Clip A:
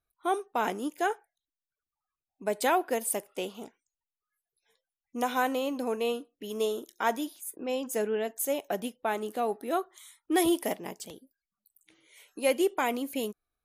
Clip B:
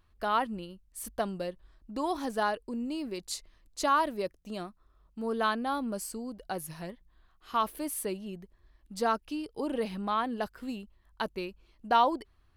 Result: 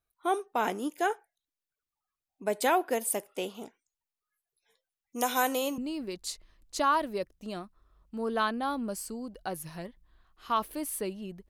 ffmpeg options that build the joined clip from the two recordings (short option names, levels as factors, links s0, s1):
-filter_complex "[0:a]asettb=1/sr,asplit=3[s0][s1][s2];[s0]atrim=end=5.124[s3];[s1]atrim=start=5.12:end=5.78,asetpts=PTS-STARTPTS,afade=t=in:d=0.004:c=qsin,afade=t=out:st=0.656:d=0.004:c=qsin,bass=f=250:g=-4,treble=f=4000:g=10[s4];[s2]atrim=start=5.776[s5];[s3][s4]acrossfade=d=0.004:c1=hsin:c2=qsin[s6];[s6][s5]acrossfade=d=0.004:c1=qsin:c2=hsin,apad=whole_dur=11.49,atrim=end=11.49,atrim=end=5.782[s7];[1:a]atrim=start=2.818:end=8.53[s8];[s7][s8]acrossfade=d=0.004:c1=hsin:c2=hsin"